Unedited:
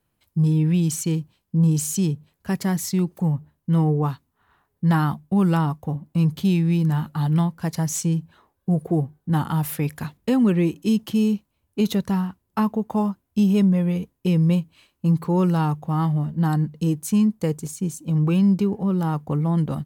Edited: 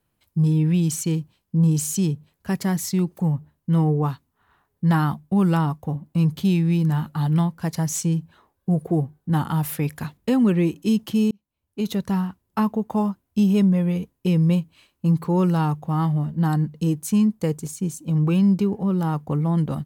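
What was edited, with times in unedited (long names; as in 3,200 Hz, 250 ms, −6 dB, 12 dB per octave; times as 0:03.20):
0:11.31–0:12.17: fade in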